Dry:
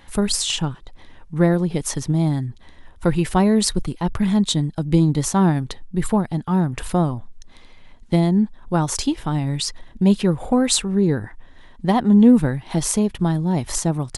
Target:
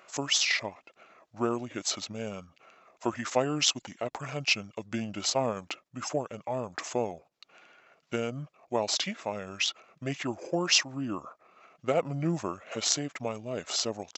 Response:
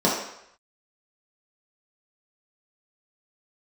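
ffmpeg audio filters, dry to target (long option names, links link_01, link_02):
-af "highpass=630,asetrate=30296,aresample=44100,atempo=1.45565,volume=-3dB"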